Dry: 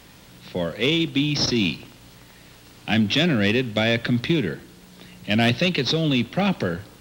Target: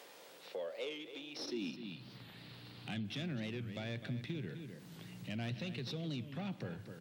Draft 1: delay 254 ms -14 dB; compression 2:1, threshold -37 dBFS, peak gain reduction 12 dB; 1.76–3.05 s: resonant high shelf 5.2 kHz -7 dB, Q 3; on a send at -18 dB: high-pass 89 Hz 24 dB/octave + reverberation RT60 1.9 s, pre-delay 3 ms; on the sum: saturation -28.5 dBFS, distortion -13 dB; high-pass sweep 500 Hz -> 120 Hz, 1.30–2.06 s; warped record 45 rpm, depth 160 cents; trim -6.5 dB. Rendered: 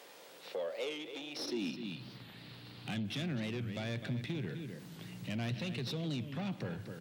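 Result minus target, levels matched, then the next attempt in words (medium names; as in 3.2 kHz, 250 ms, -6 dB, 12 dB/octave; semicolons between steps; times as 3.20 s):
compression: peak gain reduction -5 dB
delay 254 ms -14 dB; compression 2:1, threshold -47 dBFS, peak gain reduction 17 dB; 1.76–3.05 s: resonant high shelf 5.2 kHz -7 dB, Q 3; on a send at -18 dB: high-pass 89 Hz 24 dB/octave + reverberation RT60 1.9 s, pre-delay 3 ms; on the sum: saturation -28.5 dBFS, distortion -19 dB; high-pass sweep 500 Hz -> 120 Hz, 1.30–2.06 s; warped record 45 rpm, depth 160 cents; trim -6.5 dB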